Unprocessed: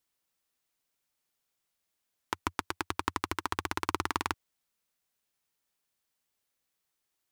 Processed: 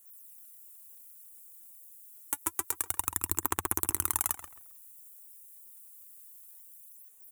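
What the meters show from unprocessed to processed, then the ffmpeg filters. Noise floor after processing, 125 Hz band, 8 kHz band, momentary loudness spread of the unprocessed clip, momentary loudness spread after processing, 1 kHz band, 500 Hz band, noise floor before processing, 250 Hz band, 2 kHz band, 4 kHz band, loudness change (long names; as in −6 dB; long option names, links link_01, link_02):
−55 dBFS, −1.0 dB, +14.5 dB, 4 LU, 20 LU, −5.0 dB, −4.0 dB, −83 dBFS, −4.0 dB, −6.0 dB, −6.5 dB, +4.5 dB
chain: -filter_complex "[0:a]alimiter=limit=-19.5dB:level=0:latency=1:release=125,aexciter=amount=14.3:drive=8.1:freq=7300,aphaser=in_gain=1:out_gain=1:delay=4.5:decay=0.68:speed=0.28:type=sinusoidal,asplit=2[link_01][link_02];[link_02]adelay=134,lowpass=frequency=3400:poles=1,volume=-8.5dB,asplit=2[link_03][link_04];[link_04]adelay=134,lowpass=frequency=3400:poles=1,volume=0.27,asplit=2[link_05][link_06];[link_06]adelay=134,lowpass=frequency=3400:poles=1,volume=0.27[link_07];[link_01][link_03][link_05][link_07]amix=inputs=4:normalize=0"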